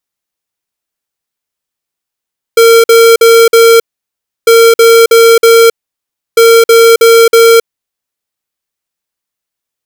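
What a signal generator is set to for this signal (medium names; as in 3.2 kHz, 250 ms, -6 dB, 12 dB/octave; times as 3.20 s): beep pattern square 459 Hz, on 0.27 s, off 0.05 s, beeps 4, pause 0.67 s, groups 3, -3 dBFS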